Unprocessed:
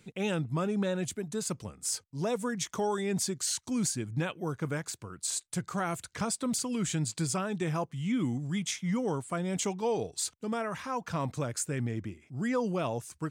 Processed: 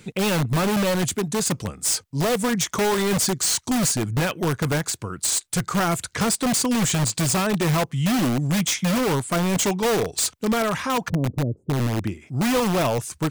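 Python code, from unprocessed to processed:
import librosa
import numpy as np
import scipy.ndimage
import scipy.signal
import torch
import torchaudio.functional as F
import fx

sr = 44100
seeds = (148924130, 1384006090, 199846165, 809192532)

p1 = fx.cheby2_lowpass(x, sr, hz=1500.0, order=4, stop_db=60, at=(11.08, 12.03), fade=0.02)
p2 = (np.mod(10.0 ** (27.5 / 20.0) * p1 + 1.0, 2.0) - 1.0) / 10.0 ** (27.5 / 20.0)
p3 = p1 + (p2 * librosa.db_to_amplitude(-3.5))
y = p3 * librosa.db_to_amplitude(8.0)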